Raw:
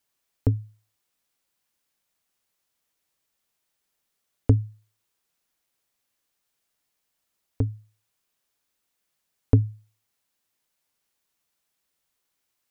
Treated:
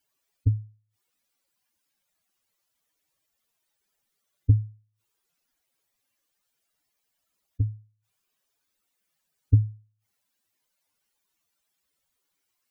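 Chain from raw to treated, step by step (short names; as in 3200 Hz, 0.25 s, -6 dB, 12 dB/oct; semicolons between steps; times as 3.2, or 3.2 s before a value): spectral contrast raised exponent 2.4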